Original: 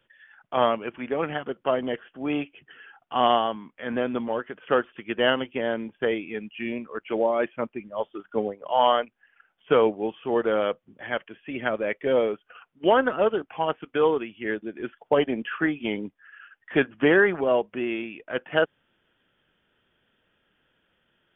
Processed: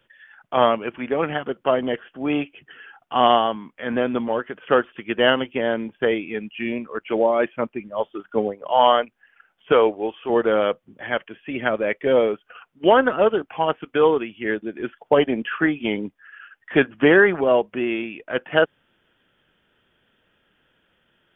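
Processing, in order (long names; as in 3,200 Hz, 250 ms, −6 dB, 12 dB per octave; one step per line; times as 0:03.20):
0:09.72–0:10.30: parametric band 160 Hz −13.5 dB 1 octave
level +4.5 dB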